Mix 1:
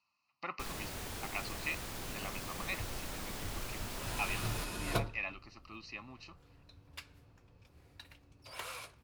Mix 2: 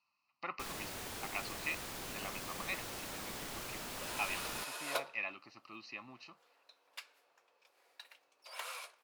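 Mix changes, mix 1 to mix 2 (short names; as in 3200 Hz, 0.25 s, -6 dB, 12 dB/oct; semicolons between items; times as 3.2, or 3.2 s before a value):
speech: add air absorption 53 m; second sound: add HPF 510 Hz 24 dB/oct; master: add low shelf 130 Hz -11 dB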